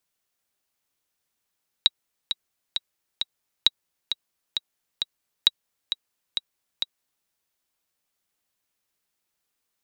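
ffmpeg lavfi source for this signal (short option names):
-f lavfi -i "aevalsrc='pow(10,(-2.5-9*gte(mod(t,4*60/133),60/133))/20)*sin(2*PI*3840*mod(t,60/133))*exp(-6.91*mod(t,60/133)/0.03)':d=5.41:s=44100"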